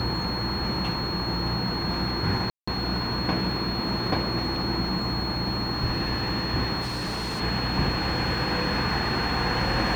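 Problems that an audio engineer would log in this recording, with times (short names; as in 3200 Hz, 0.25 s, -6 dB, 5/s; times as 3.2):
tone 4300 Hz -31 dBFS
2.5–2.67 gap 0.175 s
6.81–7.41 clipped -26.5 dBFS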